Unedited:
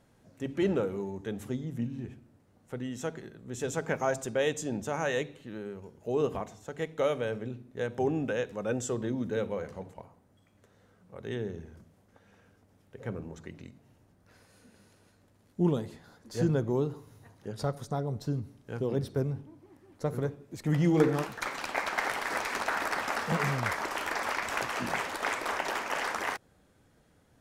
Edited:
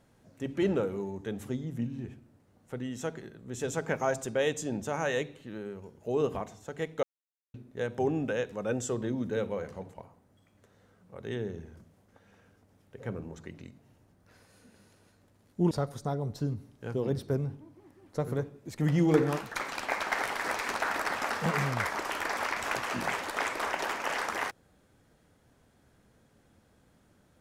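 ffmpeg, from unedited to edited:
-filter_complex "[0:a]asplit=4[a][b][c][d];[a]atrim=end=7.03,asetpts=PTS-STARTPTS,afade=t=out:st=7.026:d=0.004:c=hsin[e];[b]atrim=start=7.03:end=7.54,asetpts=PTS-STARTPTS,volume=0[f];[c]atrim=start=7.54:end=15.712,asetpts=PTS-STARTPTS,afade=t=in:d=0.004:c=hsin[g];[d]atrim=start=17.568[h];[e][f][g]concat=n=3:v=0:a=1[i];[i][h]acrossfade=d=0.004:c1=hsin:c2=hsin"

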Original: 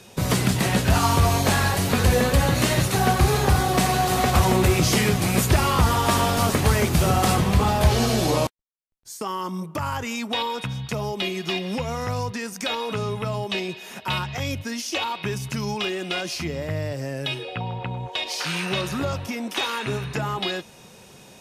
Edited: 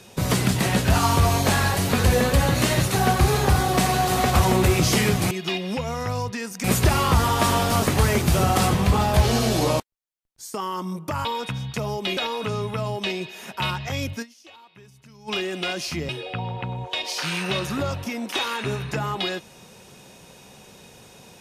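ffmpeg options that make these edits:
-filter_complex "[0:a]asplit=8[a][b][c][d][e][f][g][h];[a]atrim=end=5.312[i];[b]atrim=start=11.318:end=12.652[j];[c]atrim=start=5.308:end=9.922[k];[d]atrim=start=10.398:end=11.322[l];[e]atrim=start=12.648:end=14.84,asetpts=PTS-STARTPTS,afade=t=out:st=2.052:d=0.14:c=exp:silence=0.0841395[m];[f]atrim=start=14.84:end=15.63,asetpts=PTS-STARTPTS,volume=-21.5dB[n];[g]atrim=start=15.63:end=16.572,asetpts=PTS-STARTPTS,afade=t=in:d=0.14:c=exp:silence=0.0841395[o];[h]atrim=start=17.308[p];[i][j]acrossfade=d=0.004:c1=hsin:c2=hsin[q];[q][k]acrossfade=d=0.004:c1=hsin:c2=hsin[r];[r][l]acrossfade=d=0.004:c1=hsin:c2=hsin[s];[m][n][o]concat=n=3:v=0:a=1[t];[s][t]acrossfade=d=0.004:c1=hsin:c2=hsin[u];[u][p]acrossfade=d=0.004:c1=hsin:c2=hsin"

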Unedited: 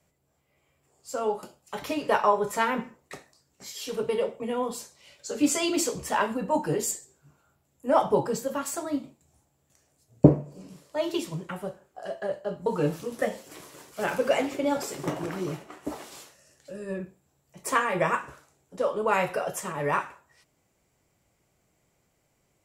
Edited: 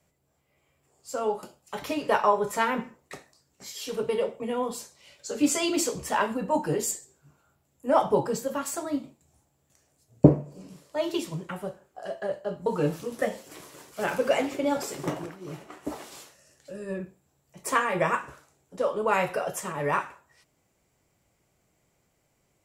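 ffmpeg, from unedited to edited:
-filter_complex "[0:a]asplit=3[a][b][c];[a]atrim=end=15.37,asetpts=PTS-STARTPTS,afade=t=out:st=15.13:d=0.24:silence=0.177828[d];[b]atrim=start=15.37:end=15.4,asetpts=PTS-STARTPTS,volume=-15dB[e];[c]atrim=start=15.4,asetpts=PTS-STARTPTS,afade=t=in:d=0.24:silence=0.177828[f];[d][e][f]concat=n=3:v=0:a=1"

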